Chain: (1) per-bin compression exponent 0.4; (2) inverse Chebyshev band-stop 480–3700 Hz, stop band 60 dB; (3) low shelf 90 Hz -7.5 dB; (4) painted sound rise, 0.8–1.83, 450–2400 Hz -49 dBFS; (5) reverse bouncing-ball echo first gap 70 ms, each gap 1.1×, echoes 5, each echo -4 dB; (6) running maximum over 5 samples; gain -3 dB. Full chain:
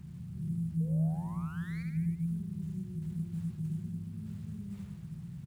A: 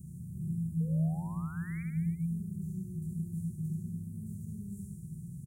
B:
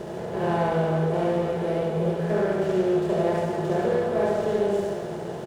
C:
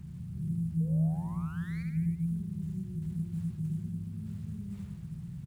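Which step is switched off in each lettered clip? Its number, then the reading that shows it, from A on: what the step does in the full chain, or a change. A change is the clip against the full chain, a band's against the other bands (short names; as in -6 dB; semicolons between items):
6, distortion -22 dB; 2, 500 Hz band +22.0 dB; 3, 125 Hz band +2.0 dB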